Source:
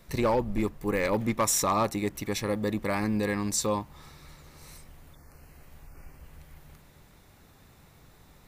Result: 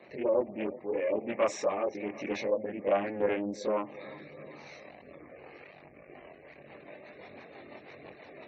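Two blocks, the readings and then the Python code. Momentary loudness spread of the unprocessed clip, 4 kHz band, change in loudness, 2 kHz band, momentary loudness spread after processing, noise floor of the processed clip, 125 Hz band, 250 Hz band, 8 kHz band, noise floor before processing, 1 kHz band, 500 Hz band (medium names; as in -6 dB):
7 LU, -11.0 dB, -3.5 dB, -5.0 dB, 21 LU, -54 dBFS, -16.0 dB, -7.0 dB, -19.0 dB, -57 dBFS, -6.5 dB, +1.0 dB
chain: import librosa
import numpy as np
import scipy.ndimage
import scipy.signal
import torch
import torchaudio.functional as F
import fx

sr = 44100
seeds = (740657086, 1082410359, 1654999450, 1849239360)

y = x + 0.5 * 10.0 ** (-40.0 / 20.0) * np.sign(x)
y = fx.high_shelf(y, sr, hz=2800.0, db=-11.0)
y = fx.rider(y, sr, range_db=10, speed_s=2.0)
y = 10.0 ** (-22.0 / 20.0) * np.tanh(y / 10.0 ** (-22.0 / 20.0))
y = fx.chorus_voices(y, sr, voices=2, hz=0.68, base_ms=22, depth_ms=1.7, mix_pct=55)
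y = fx.rotary_switch(y, sr, hz=1.2, then_hz=6.0, switch_at_s=5.9)
y = fx.cabinet(y, sr, low_hz=380.0, low_slope=12, high_hz=5300.0, hz=(600.0, 950.0, 1400.0, 2300.0, 3300.0, 4900.0), db=(5, -6, -10, 4, -7, -6))
y = fx.echo_feedback(y, sr, ms=366, feedback_pct=56, wet_db=-18.5)
y = fx.spec_gate(y, sr, threshold_db=-25, keep='strong')
y = fx.doppler_dist(y, sr, depth_ms=0.24)
y = y * librosa.db_to_amplitude(7.0)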